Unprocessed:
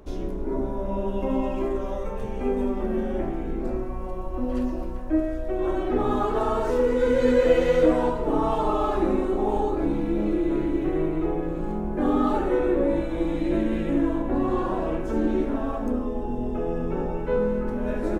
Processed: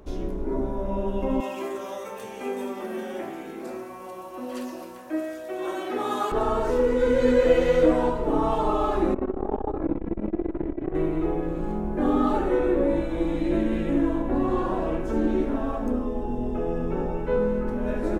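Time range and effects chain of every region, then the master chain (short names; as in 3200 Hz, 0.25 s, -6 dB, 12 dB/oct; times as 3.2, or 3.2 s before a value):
1.4–6.32 HPF 150 Hz + tilt +3.5 dB/oct
9.14–10.95 LPF 1700 Hz + flutter echo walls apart 9.7 m, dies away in 0.33 s + core saturation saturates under 240 Hz
whole clip: dry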